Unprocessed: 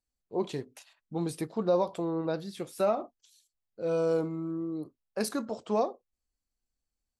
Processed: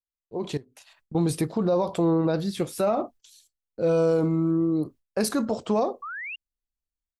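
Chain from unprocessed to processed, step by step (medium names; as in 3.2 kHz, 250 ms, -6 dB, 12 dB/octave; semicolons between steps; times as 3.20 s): gate with hold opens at -52 dBFS; bass shelf 150 Hz +9 dB; 0.57–1.15 s: compression 8:1, threshold -50 dBFS, peak gain reduction 19.5 dB; peak limiter -24.5 dBFS, peak gain reduction 9 dB; level rider gain up to 12 dB; 6.02–6.36 s: painted sound rise 1.1–2.9 kHz -32 dBFS; trim -3 dB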